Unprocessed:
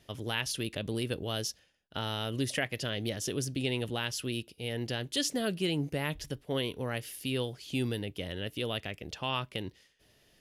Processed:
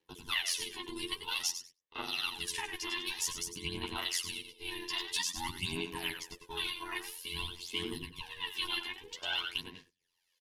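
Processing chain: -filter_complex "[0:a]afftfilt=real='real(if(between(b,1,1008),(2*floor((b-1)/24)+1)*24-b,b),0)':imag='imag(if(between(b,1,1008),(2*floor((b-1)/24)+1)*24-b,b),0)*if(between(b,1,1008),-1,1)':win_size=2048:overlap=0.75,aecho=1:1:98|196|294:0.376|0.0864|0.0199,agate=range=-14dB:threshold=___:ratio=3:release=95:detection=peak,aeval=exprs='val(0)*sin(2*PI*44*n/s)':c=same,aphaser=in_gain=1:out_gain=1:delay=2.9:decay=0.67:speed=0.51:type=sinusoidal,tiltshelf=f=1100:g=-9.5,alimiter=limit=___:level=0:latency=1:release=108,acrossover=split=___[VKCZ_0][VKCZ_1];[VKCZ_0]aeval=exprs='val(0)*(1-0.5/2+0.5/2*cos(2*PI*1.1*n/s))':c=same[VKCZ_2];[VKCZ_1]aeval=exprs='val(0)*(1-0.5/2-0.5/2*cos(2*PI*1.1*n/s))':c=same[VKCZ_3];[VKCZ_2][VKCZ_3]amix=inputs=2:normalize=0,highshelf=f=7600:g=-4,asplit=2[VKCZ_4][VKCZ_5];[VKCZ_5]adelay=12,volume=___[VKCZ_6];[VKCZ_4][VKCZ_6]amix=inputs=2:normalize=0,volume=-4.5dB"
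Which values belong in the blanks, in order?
-54dB, -15.5dB, 770, -2.5dB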